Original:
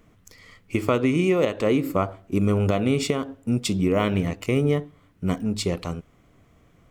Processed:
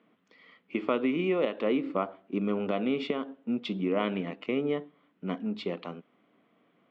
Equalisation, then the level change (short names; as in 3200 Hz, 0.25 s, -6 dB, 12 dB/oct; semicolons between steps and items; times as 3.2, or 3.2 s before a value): elliptic band-pass 210–3400 Hz, stop band 60 dB; -5.5 dB